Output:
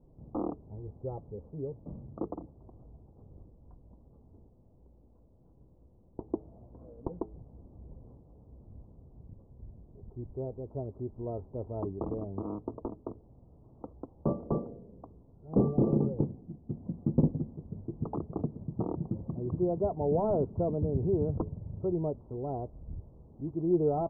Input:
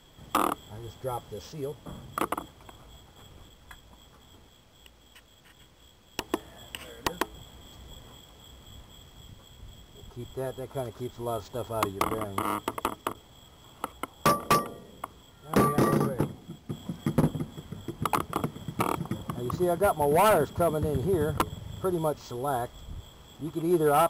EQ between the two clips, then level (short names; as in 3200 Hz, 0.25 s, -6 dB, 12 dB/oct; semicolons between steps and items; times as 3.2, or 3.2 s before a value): Gaussian blur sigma 14 samples; 0.0 dB